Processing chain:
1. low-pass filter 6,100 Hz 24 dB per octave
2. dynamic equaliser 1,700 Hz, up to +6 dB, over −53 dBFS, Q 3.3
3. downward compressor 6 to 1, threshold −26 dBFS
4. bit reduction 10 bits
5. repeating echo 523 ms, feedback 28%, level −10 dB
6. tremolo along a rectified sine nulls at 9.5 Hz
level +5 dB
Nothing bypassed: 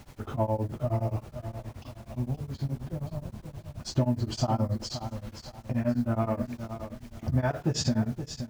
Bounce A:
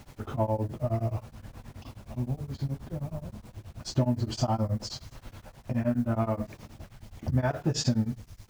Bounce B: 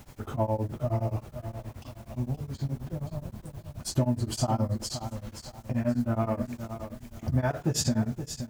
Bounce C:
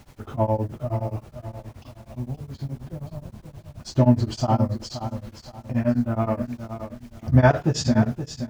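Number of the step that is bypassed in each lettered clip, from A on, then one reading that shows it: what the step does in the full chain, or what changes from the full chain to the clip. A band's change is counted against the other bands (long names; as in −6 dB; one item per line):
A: 5, change in momentary loudness spread +5 LU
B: 1, 8 kHz band +5.0 dB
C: 3, average gain reduction 2.0 dB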